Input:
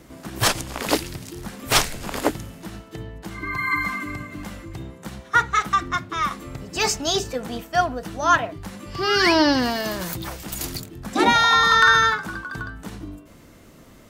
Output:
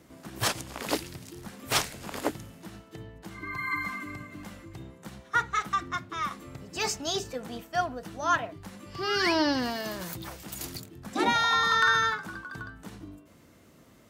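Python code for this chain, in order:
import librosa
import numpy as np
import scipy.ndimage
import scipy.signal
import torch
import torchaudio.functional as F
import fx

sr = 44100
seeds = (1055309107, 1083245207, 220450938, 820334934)

y = scipy.signal.sosfilt(scipy.signal.butter(2, 66.0, 'highpass', fs=sr, output='sos'), x)
y = F.gain(torch.from_numpy(y), -8.0).numpy()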